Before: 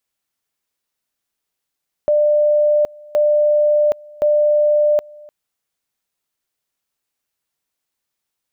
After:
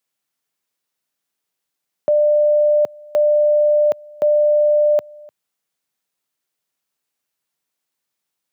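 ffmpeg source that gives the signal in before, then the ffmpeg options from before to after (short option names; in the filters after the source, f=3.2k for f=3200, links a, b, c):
-f lavfi -i "aevalsrc='pow(10,(-11-25.5*gte(mod(t,1.07),0.77))/20)*sin(2*PI*596*t)':d=3.21:s=44100"
-af "highpass=f=110:w=0.5412,highpass=f=110:w=1.3066"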